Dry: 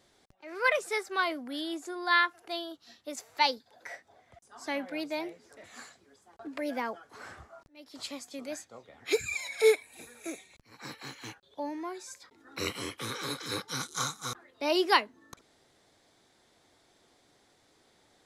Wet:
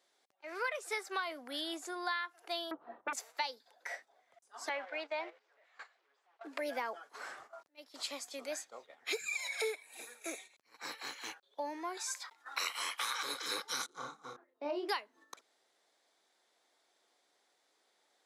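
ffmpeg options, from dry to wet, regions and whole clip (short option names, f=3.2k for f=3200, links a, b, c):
-filter_complex "[0:a]asettb=1/sr,asplit=3[a][b][c];[a]atrim=end=2.714[d];[b]atrim=start=2.71:end=3.13,asetpts=PTS-STARTPTS,afade=t=in:d=0.004:c=qsin,afade=t=out:st=0.416:d=0.004:c=qsin,lowpass=f=1.1k:w=0.5412,lowpass=f=1.1k:w=1.3066,aeval=exprs='0.0316*sin(PI/2*3.55*val(0)/0.0316)':c=same[e];[c]atrim=start=3.126[f];[d][e]acrossfade=d=0.004:c1=hsin:c2=qsin[g];[g][f]acrossfade=d=0.004:c1=qsin:c2=hsin,asettb=1/sr,asplit=3[h][i][j];[h]atrim=end=4.694[k];[i]atrim=start=4.69:end=6.44,asetpts=PTS-STARTPTS,afade=t=in:d=0.004:c=qsin,afade=t=out:st=1.746:d=0.004:c=qsin,aeval=exprs='val(0)+0.5*0.00473*sgn(val(0))':c=same,highpass=530,lowpass=2.8k,agate=range=-11dB:threshold=-46dB:ratio=16:release=100:detection=peak[l];[j]atrim=start=6.436[m];[k][l]acrossfade=d=0.004:c1=hsin:c2=qsin[n];[n][m]acrossfade=d=0.004:c1=qsin:c2=hsin,asettb=1/sr,asplit=3[o][p][q];[o]atrim=end=11.974[r];[p]atrim=start=11.97:end=13.23,asetpts=PTS-STARTPTS,afade=t=in:d=0.004:c=qsin,afade=t=out:st=1.256:d=0.004:c=qsin,lowshelf=f=580:t=q:w=1.5:g=-13,acontrast=52[s];[q]atrim=start=13.226[t];[r][s]acrossfade=d=0.004:c1=hsin:c2=qsin[u];[u][t]acrossfade=d=0.004:c1=qsin:c2=hsin,asettb=1/sr,asplit=3[v][w][x];[v]atrim=end=13.864[y];[w]atrim=start=13.86:end=14.89,asetpts=PTS-STARTPTS,afade=t=in:d=0.004:c=qsin,afade=t=out:st=1.026:d=0.004:c=qsin,bandpass=f=170:t=q:w=0.5,asplit=2[z][aa];[aa]adelay=31,volume=-4.5dB[ab];[z][ab]amix=inputs=2:normalize=0,atrim=end_sample=45423[ac];[x]atrim=start=14.886[ad];[y][ac]acrossfade=d=0.004:c1=hsin:c2=qsin[ae];[ae][ad]acrossfade=d=0.004:c1=qsin:c2=hsin,agate=range=-9dB:threshold=-52dB:ratio=16:detection=peak,highpass=500,acompressor=threshold=-34dB:ratio=12,volume=1dB"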